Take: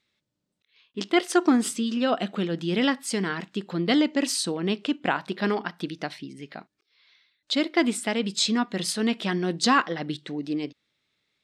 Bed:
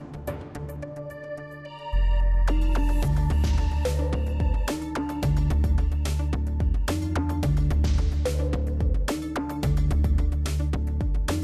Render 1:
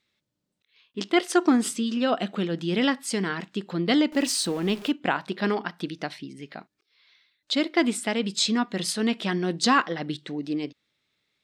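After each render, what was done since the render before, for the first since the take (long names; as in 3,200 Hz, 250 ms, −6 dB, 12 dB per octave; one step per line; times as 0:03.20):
0:04.12–0:04.92: converter with a step at zero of −37.5 dBFS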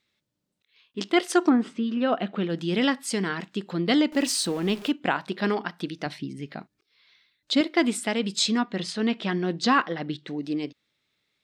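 0:01.48–0:02.48: low-pass filter 1,700 Hz → 3,400 Hz
0:06.06–0:07.61: low-shelf EQ 230 Hz +10.5 dB
0:08.61–0:10.28: high-frequency loss of the air 100 metres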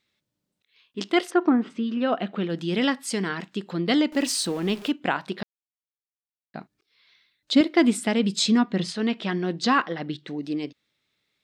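0:01.29–0:01.69: low-pass filter 1,500 Hz → 3,700 Hz
0:05.43–0:06.54: silence
0:07.54–0:08.92: low-shelf EQ 310 Hz +8.5 dB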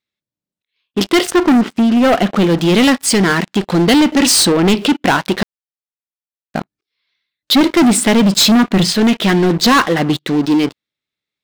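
leveller curve on the samples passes 5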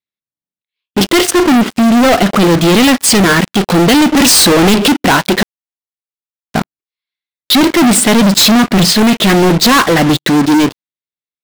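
leveller curve on the samples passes 5
transient designer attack −1 dB, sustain −8 dB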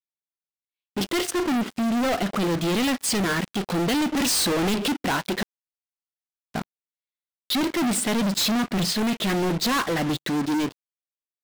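level −15 dB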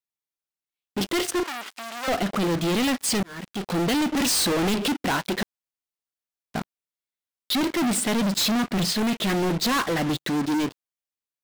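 0:01.43–0:02.08: high-pass filter 950 Hz
0:03.23–0:03.77: fade in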